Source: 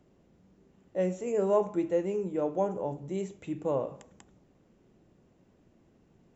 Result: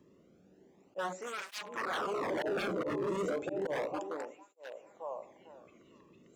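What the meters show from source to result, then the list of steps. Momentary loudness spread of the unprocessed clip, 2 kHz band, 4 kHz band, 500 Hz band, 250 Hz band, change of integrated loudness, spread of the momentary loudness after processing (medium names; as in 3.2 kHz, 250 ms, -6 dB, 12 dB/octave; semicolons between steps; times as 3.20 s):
9 LU, +11.5 dB, no reading, -6.0 dB, -6.5 dB, -5.5 dB, 16 LU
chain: on a send: repeats whose band climbs or falls 450 ms, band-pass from 320 Hz, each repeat 0.7 oct, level -1.5 dB; on the sum: slow attack 103 ms; wavefolder -30 dBFS; cancelling through-zero flanger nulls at 0.33 Hz, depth 1.4 ms; trim +3 dB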